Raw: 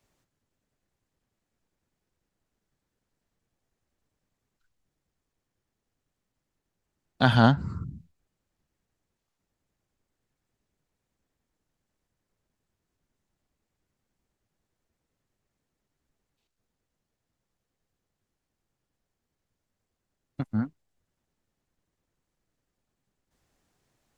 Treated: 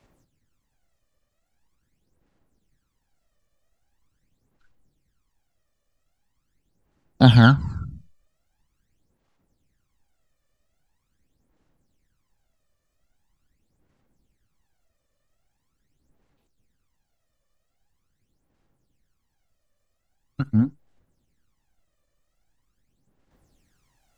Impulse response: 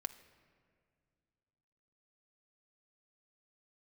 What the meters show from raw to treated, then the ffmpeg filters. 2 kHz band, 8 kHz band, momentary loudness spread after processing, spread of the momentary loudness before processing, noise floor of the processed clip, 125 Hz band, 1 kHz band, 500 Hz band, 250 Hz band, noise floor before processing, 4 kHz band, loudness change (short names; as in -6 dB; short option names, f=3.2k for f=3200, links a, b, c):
+4.0 dB, n/a, 20 LU, 19 LU, -75 dBFS, +8.5 dB, +1.5 dB, +2.0 dB, +7.0 dB, -84 dBFS, +6.0 dB, +6.5 dB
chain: -filter_complex "[0:a]aphaser=in_gain=1:out_gain=1:delay=1.7:decay=0.69:speed=0.43:type=sinusoidal,asplit=2[a][b];[1:a]atrim=start_sample=2205,atrim=end_sample=3528[c];[b][c]afir=irnorm=-1:irlink=0,volume=0dB[d];[a][d]amix=inputs=2:normalize=0,volume=-2.5dB"